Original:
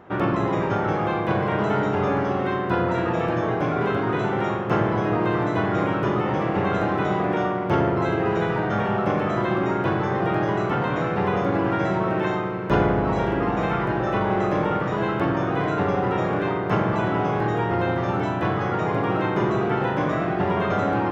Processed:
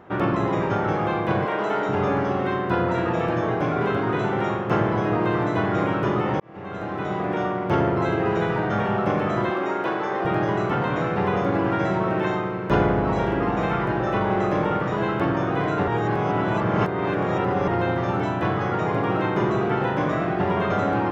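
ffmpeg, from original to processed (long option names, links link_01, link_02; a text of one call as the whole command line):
ffmpeg -i in.wav -filter_complex "[0:a]asettb=1/sr,asplit=3[link_01][link_02][link_03];[link_01]atrim=end=1.454[link_04];[link_02]atrim=start=1.45:end=1.89,asetpts=PTS-STARTPTS,afade=type=in:duration=0.004:curve=qsin,afade=type=out:start_time=0.436:duration=0.004:curve=qsin,highpass=320[link_05];[link_03]atrim=start=1.886[link_06];[link_04][link_05]acrossfade=duration=0.004:curve1=hsin:curve2=qsin[link_07];[link_07][link_06]acrossfade=duration=0.004:curve1=qsin:curve2=hsin,asettb=1/sr,asplit=3[link_08][link_09][link_10];[link_08]atrim=end=9.504[link_11];[link_09]atrim=start=9.5:end=10.25,asetpts=PTS-STARTPTS,afade=type=in:duration=0.004:curve=qsin,afade=type=out:start_time=0.746:duration=0.004:curve=qsin,highpass=330[link_12];[link_10]atrim=start=10.246[link_13];[link_11][link_12]acrossfade=duration=0.004:curve1=hsin:curve2=qsin[link_14];[link_14][link_13]acrossfade=duration=0.004:curve1=qsin:curve2=hsin,asplit=4[link_15][link_16][link_17][link_18];[link_15]atrim=end=6.4,asetpts=PTS-STARTPTS,afade=type=out:start_time=6.396:duration=0.004:curve=hsin[link_19];[link_16]atrim=start=6.4:end=15.882,asetpts=PTS-STARTPTS,afade=type=in:duration=1.62:curve=qsin[link_20];[link_17]atrim=start=15.878:end=17.682,asetpts=PTS-STARTPTS,areverse[link_21];[link_18]atrim=start=17.678[link_22];[link_19][link_20]concat=n=2:v=0:a=1[link_23];[link_23][link_21]acrossfade=duration=0.004:curve1=hsin:curve2=hsin[link_24];[link_24][link_22]acrossfade=duration=0.004:curve1=hsin:curve2=hsin" out.wav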